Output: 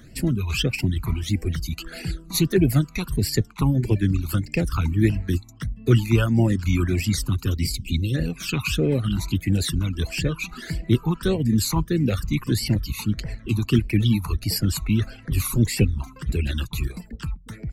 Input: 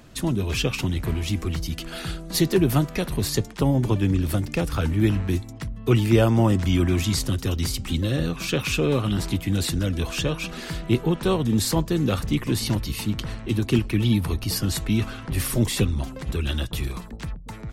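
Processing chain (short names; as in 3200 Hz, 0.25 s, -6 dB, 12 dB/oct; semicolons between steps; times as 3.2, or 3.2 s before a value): spectral delete 7.62–8.14, 530–2000 Hz; reverb removal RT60 0.94 s; phaser stages 12, 1.6 Hz, lowest notch 530–1200 Hz; gain +3 dB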